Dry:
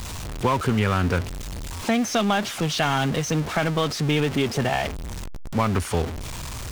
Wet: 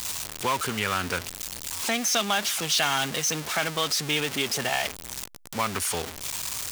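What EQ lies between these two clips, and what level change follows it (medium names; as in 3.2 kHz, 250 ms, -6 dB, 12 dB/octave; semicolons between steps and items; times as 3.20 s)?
tilt EQ +3.5 dB/octave; -3.0 dB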